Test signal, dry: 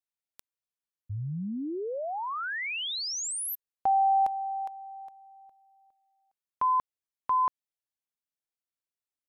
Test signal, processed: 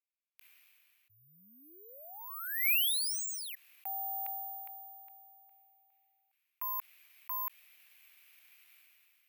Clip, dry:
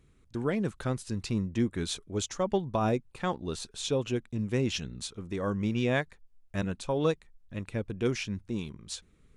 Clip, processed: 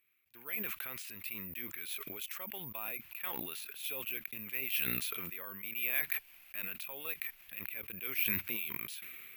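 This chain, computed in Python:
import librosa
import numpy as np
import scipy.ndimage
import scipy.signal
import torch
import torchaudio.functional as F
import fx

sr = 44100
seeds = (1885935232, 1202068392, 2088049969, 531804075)

y = fx.bandpass_q(x, sr, hz=2400.0, q=4.4)
y = (np.kron(y[::3], np.eye(3)[0]) * 3)[:len(y)]
y = fx.sustainer(y, sr, db_per_s=20.0)
y = y * 10.0 ** (2.0 / 20.0)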